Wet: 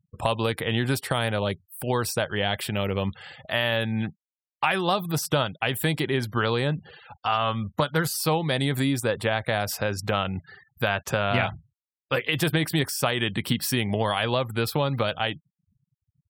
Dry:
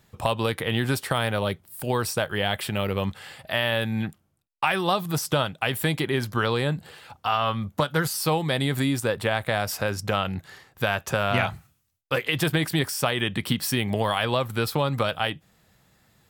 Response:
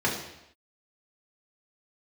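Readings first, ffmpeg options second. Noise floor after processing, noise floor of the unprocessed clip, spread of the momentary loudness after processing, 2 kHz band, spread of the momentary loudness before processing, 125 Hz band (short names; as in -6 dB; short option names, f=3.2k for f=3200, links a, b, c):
under -85 dBFS, -67 dBFS, 5 LU, -0.5 dB, 5 LU, 0.0 dB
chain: -af "afftfilt=real='re*gte(hypot(re,im),0.00708)':imag='im*gte(hypot(re,im),0.00708)':win_size=1024:overlap=0.75,adynamicequalizer=threshold=0.00794:dfrequency=1200:dqfactor=2:tfrequency=1200:tqfactor=2:attack=5:release=100:ratio=0.375:range=1.5:mode=cutabove:tftype=bell"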